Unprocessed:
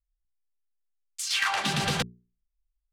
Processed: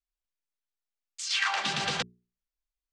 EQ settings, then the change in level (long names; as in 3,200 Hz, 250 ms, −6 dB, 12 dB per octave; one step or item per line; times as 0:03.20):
low-pass filter 7,300 Hz 24 dB per octave
low-shelf EQ 110 Hz −5.5 dB
low-shelf EQ 350 Hz −8 dB
−1.0 dB